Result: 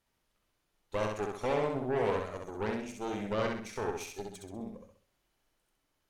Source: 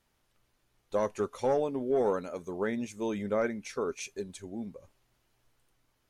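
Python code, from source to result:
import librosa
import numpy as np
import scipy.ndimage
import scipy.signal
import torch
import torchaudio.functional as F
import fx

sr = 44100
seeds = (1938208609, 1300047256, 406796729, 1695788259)

y = fx.hum_notches(x, sr, base_hz=60, count=4)
y = fx.cheby_harmonics(y, sr, harmonics=(6,), levels_db=(-13,), full_scale_db=-17.0)
y = fx.echo_feedback(y, sr, ms=65, feedback_pct=40, wet_db=-3.5)
y = y * 10.0 ** (-5.5 / 20.0)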